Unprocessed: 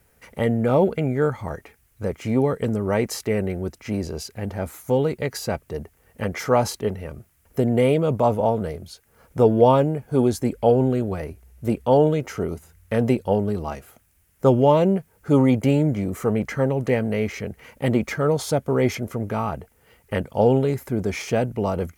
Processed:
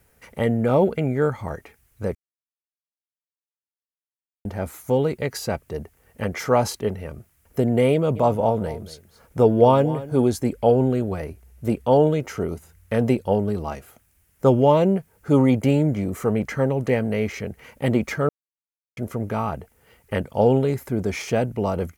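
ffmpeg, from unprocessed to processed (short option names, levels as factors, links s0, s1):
-filter_complex "[0:a]asplit=3[s0][s1][s2];[s0]afade=t=out:st=8.15:d=0.02[s3];[s1]aecho=1:1:229:0.158,afade=t=in:st=8.15:d=0.02,afade=t=out:st=10.31:d=0.02[s4];[s2]afade=t=in:st=10.31:d=0.02[s5];[s3][s4][s5]amix=inputs=3:normalize=0,asplit=5[s6][s7][s8][s9][s10];[s6]atrim=end=2.15,asetpts=PTS-STARTPTS,afade=t=out:st=2.146:d=0.004:c=hsin[s11];[s7]atrim=start=2.15:end=4.45,asetpts=PTS-STARTPTS,volume=0[s12];[s8]atrim=start=4.45:end=18.29,asetpts=PTS-STARTPTS,afade=t=in:d=0.004:c=hsin,afade=t=out:st=13.836:d=0.004:c=hsin[s13];[s9]atrim=start=18.29:end=18.97,asetpts=PTS-STARTPTS,volume=0[s14];[s10]atrim=start=18.97,asetpts=PTS-STARTPTS,afade=t=in:d=0.004:c=hsin[s15];[s11][s12][s13][s14][s15]concat=n=5:v=0:a=1"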